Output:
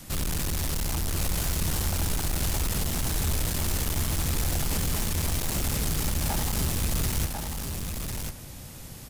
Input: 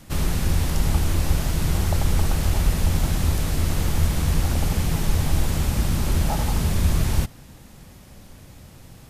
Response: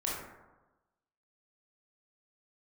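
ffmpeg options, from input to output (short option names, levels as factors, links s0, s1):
-filter_complex "[0:a]highshelf=f=4400:g=9,acrossover=split=480|2500[s0][s1][s2];[s0]alimiter=limit=0.158:level=0:latency=1:release=22[s3];[s3][s1][s2]amix=inputs=3:normalize=0,asoftclip=type=hard:threshold=0.0501,aecho=1:1:1046:0.562"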